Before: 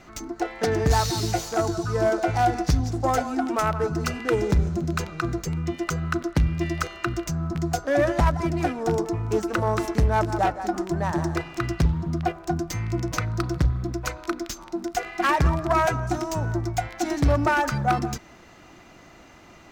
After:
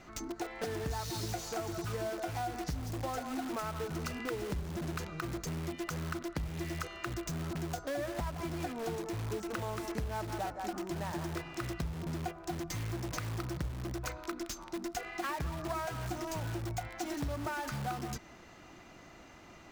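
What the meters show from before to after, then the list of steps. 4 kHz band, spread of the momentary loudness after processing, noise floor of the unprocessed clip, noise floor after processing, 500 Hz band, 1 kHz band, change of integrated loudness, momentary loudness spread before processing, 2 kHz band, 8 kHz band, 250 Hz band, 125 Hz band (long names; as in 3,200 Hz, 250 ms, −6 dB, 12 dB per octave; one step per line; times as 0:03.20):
−9.0 dB, 3 LU, −49 dBFS, −54 dBFS, −13.5 dB, −14.0 dB, −13.0 dB, 7 LU, −12.5 dB, −9.0 dB, −12.5 dB, −13.5 dB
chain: in parallel at −6 dB: wrap-around overflow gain 24.5 dB
on the sum: downward compressor 4 to 1, threshold −26 dBFS, peak gain reduction 10 dB
level −8.5 dB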